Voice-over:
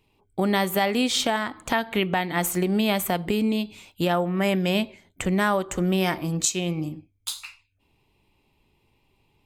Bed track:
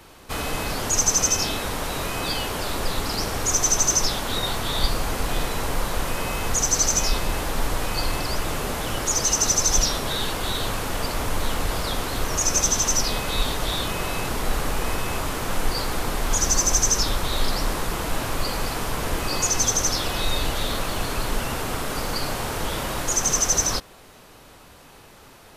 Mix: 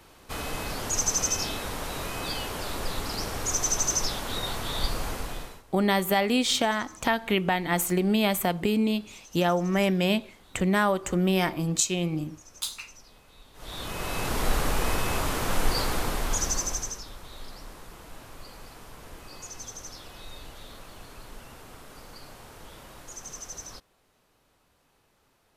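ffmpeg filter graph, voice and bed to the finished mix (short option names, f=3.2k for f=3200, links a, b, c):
-filter_complex "[0:a]adelay=5350,volume=-1dB[a];[1:a]volume=23dB,afade=t=out:st=5.07:d=0.56:silence=0.0630957,afade=t=in:st=13.53:d=0.89:silence=0.0354813,afade=t=out:st=15.82:d=1.19:silence=0.11885[b];[a][b]amix=inputs=2:normalize=0"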